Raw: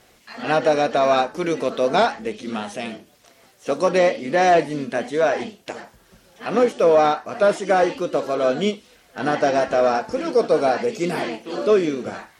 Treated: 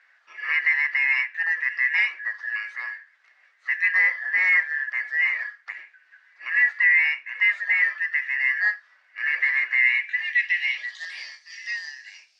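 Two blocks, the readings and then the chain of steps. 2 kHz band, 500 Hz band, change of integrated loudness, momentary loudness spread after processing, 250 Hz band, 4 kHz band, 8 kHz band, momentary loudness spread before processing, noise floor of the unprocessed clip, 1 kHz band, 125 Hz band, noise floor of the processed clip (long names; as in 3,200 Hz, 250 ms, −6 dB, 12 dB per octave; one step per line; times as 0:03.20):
+10.5 dB, below −40 dB, −1.0 dB, 16 LU, below −40 dB, −5.0 dB, below −15 dB, 13 LU, −55 dBFS, −22.5 dB, below −40 dB, −61 dBFS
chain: band-splitting scrambler in four parts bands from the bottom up 2143
band-pass filter sweep 1,600 Hz → 5,000 Hz, 0:09.67–0:11.35
three-way crossover with the lows and the highs turned down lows −19 dB, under 400 Hz, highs −18 dB, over 8,000 Hz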